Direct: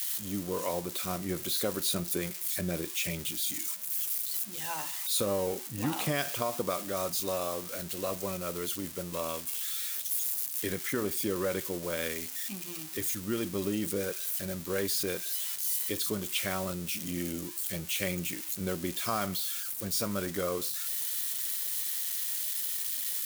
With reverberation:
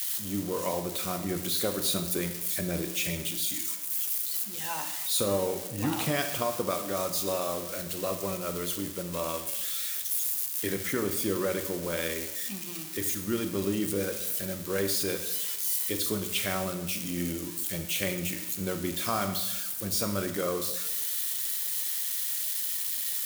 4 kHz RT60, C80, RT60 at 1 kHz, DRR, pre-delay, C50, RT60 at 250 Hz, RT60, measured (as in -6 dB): 0.85 s, 11.5 dB, 0.95 s, 7.5 dB, 28 ms, 9.5 dB, 1.0 s, 0.95 s